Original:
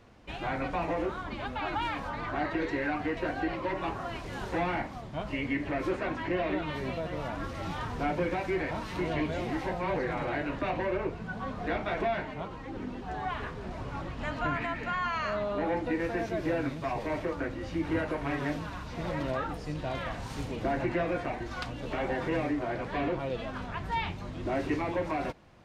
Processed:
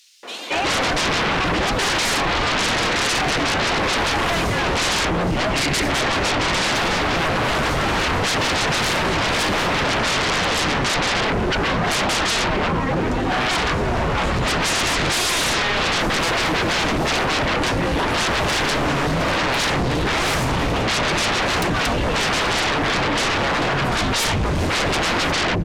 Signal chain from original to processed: three bands offset in time highs, mids, lows 0.23/0.55 s, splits 290/3800 Hz; sine folder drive 19 dB, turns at -18.5 dBFS; gain +1.5 dB

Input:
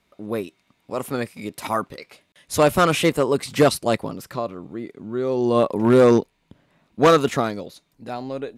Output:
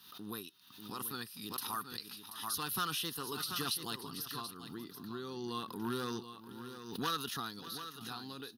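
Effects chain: HPF 100 Hz; pre-emphasis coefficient 0.9; compressor 2:1, threshold -51 dBFS, peak gain reduction 14.5 dB; fixed phaser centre 2200 Hz, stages 6; tapped delay 0.589/0.733 s -17.5/-10.5 dB; backwards sustainer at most 70 dB/s; gain +10.5 dB

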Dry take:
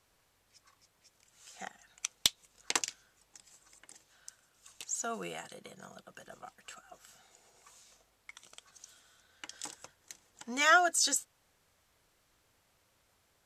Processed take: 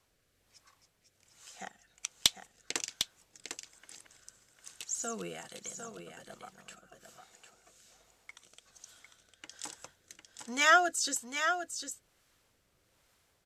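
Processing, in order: 2.89–5.6 reverse delay 0.53 s, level -3 dB; rotary speaker horn 1.2 Hz; echo 0.752 s -7.5 dB; gain +2 dB

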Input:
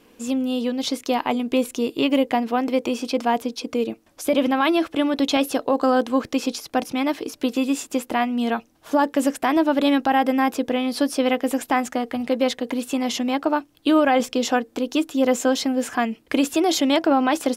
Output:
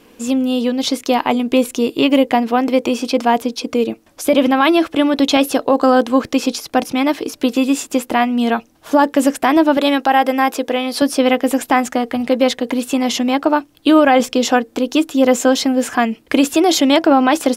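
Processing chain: 9.77–11.02 tone controls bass -12 dB, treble +1 dB; gain +6.5 dB

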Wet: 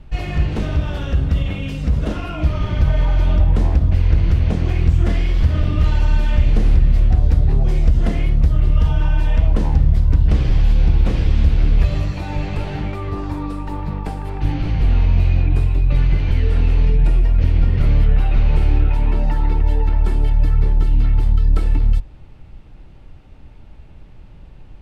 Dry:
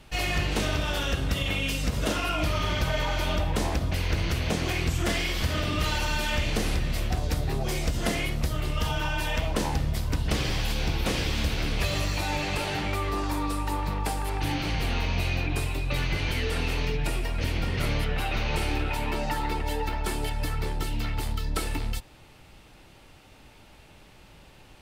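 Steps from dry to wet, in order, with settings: RIAA curve playback; notches 50/100 Hz; gain -1 dB

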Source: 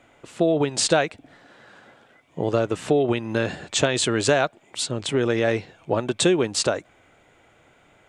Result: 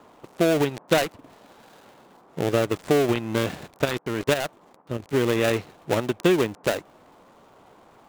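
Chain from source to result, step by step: switching dead time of 0.24 ms; band noise 160–1100 Hz -54 dBFS; 3.67–5.13 level quantiser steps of 9 dB

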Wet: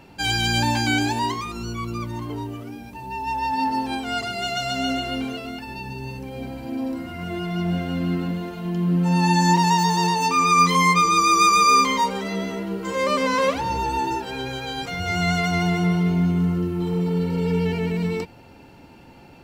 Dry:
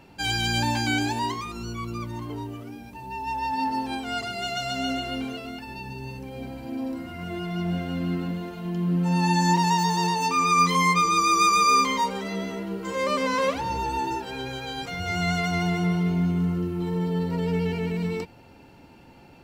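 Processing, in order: spectral repair 16.87–17.57, 560–3200 Hz both; gain +3.5 dB

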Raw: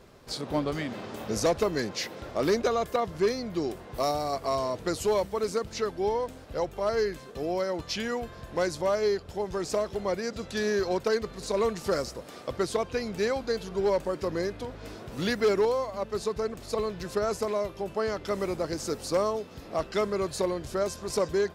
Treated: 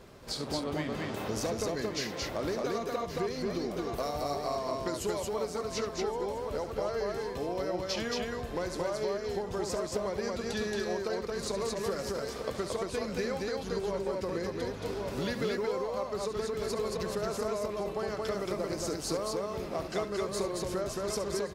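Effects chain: echo 1.119 s -13 dB; compressor, threshold -33 dBFS, peak gain reduction 12 dB; loudspeakers at several distances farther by 24 m -11 dB, 77 m -2 dB; gain +1 dB

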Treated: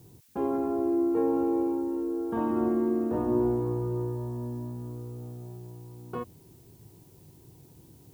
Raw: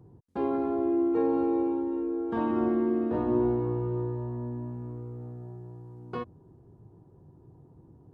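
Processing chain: LPF 2700 Hz; bell 2000 Hz -4 dB 0.85 oct; added noise blue -62 dBFS

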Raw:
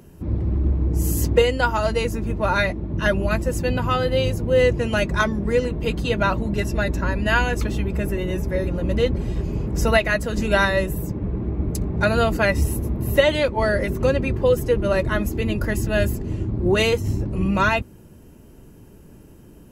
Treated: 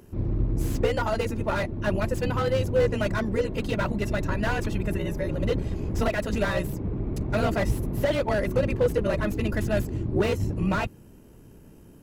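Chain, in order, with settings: granular stretch 0.61×, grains 30 ms; slew limiter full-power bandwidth 91 Hz; gain -2.5 dB

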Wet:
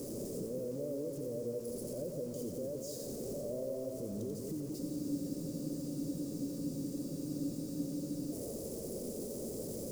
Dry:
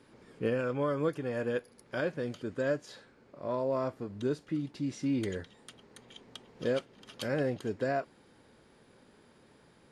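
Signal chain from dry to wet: zero-crossing step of -40.5 dBFS; compressor 5:1, threshold -42 dBFS, peak gain reduction 15.5 dB; EQ curve 120 Hz 0 dB, 580 Hz +4 dB, 1000 Hz -29 dB, 7500 Hz +2 dB; limiter -40.5 dBFS, peak gain reduction 10.5 dB; split-band echo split 1200 Hz, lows 0.171 s, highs 88 ms, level -4.5 dB; requantised 10-bit, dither none; band shelf 2400 Hz -11 dB; notches 50/100 Hz; spectral freeze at 4.8, 3.52 s; gain +6 dB

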